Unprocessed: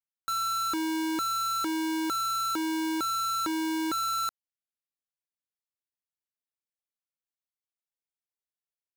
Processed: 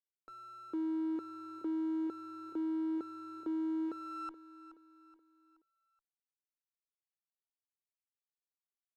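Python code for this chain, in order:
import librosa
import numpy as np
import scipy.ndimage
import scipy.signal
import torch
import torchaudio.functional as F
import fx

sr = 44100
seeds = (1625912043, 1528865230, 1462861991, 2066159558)

p1 = fx.wiener(x, sr, points=25)
p2 = fx.filter_sweep_bandpass(p1, sr, from_hz=380.0, to_hz=7800.0, start_s=3.83, end_s=5.46, q=2.0)
p3 = p2 + fx.echo_feedback(p2, sr, ms=425, feedback_pct=44, wet_db=-15.0, dry=0)
p4 = fx.running_max(p3, sr, window=3)
y = F.gain(torch.from_numpy(p4), -2.5).numpy()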